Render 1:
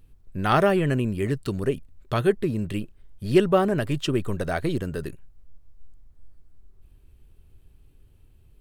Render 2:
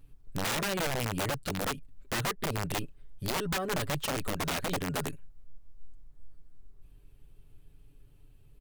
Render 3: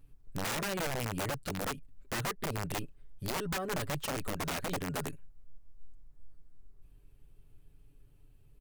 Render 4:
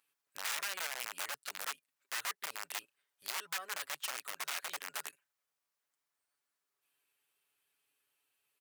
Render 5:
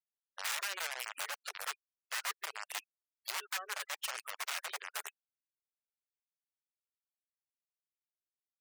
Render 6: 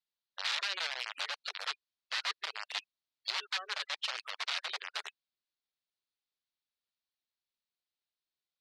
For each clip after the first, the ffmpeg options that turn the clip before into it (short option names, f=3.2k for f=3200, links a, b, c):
-af "aecho=1:1:7:0.62,acompressor=threshold=-23dB:ratio=10,aeval=exprs='(mod(13.3*val(0)+1,2)-1)/13.3':c=same,volume=-3dB"
-af "equalizer=f=3.5k:t=o:w=0.77:g=-2.5,volume=-3dB"
-af "highpass=1.3k"
-af "afftfilt=real='re*gte(hypot(re,im),0.00562)':imag='im*gte(hypot(re,im),0.00562)':win_size=1024:overlap=0.75,volume=1dB"
-af "lowpass=f=4.1k:t=q:w=2.9"